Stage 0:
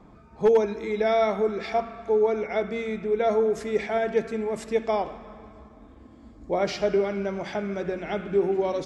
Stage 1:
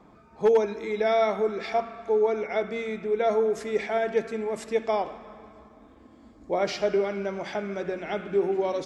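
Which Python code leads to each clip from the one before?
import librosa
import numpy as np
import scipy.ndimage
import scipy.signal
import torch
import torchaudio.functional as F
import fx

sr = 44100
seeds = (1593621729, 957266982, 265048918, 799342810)

y = fx.low_shelf(x, sr, hz=150.0, db=-10.5)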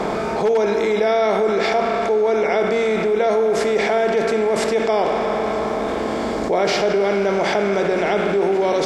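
y = fx.bin_compress(x, sr, power=0.6)
y = fx.env_flatten(y, sr, amount_pct=70)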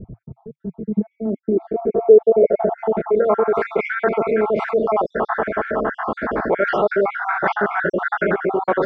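y = fx.spec_dropout(x, sr, seeds[0], share_pct=56)
y = fx.filter_sweep_lowpass(y, sr, from_hz=110.0, to_hz=1500.0, start_s=0.17, end_s=3.64, q=3.3)
y = y * 10.0 ** (1.0 / 20.0)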